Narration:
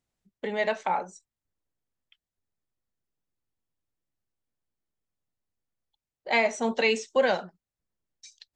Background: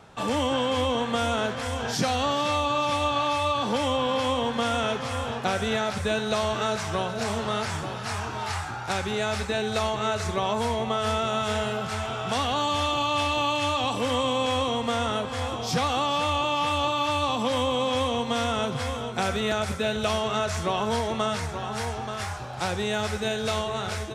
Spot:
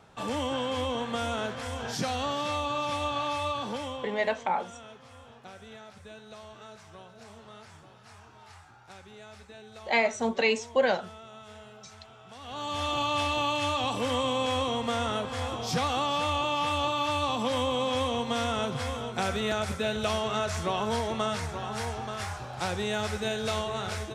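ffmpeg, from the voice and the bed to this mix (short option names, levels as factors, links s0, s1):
-filter_complex "[0:a]adelay=3600,volume=0.891[s0];[1:a]volume=4.22,afade=t=out:st=3.47:d=0.75:silence=0.16788,afade=t=in:st=12.4:d=0.58:silence=0.125893[s1];[s0][s1]amix=inputs=2:normalize=0"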